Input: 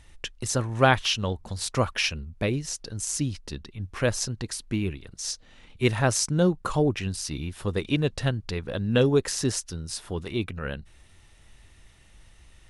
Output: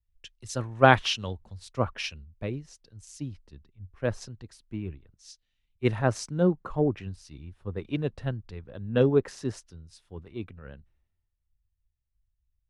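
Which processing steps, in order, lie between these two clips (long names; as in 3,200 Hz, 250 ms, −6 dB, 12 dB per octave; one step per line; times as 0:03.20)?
low-pass filter 2,600 Hz 6 dB per octave, from 0:01.32 1,600 Hz
multiband upward and downward expander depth 100%
level −6 dB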